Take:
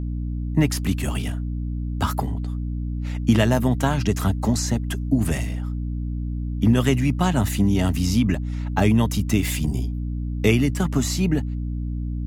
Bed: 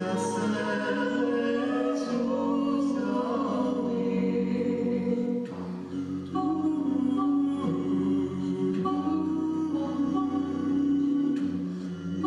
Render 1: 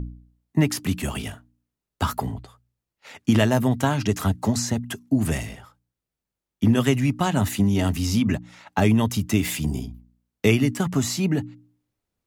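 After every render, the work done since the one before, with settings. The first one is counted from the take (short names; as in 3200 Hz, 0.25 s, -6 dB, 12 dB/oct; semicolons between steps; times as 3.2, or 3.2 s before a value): de-hum 60 Hz, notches 5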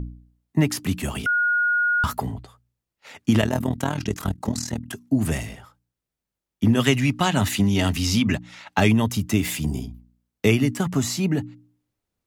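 1.26–2.04 bleep 1440 Hz -17.5 dBFS; 3.41–4.93 AM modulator 40 Hz, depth 75%; 6.79–8.93 bell 3200 Hz +7 dB 2.4 oct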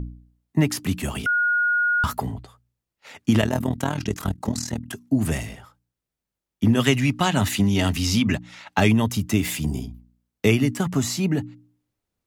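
nothing audible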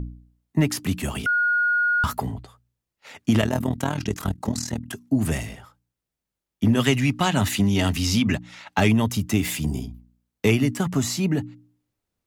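soft clip -6.5 dBFS, distortion -26 dB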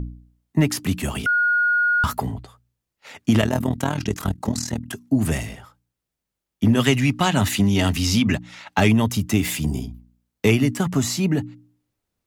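gain +2 dB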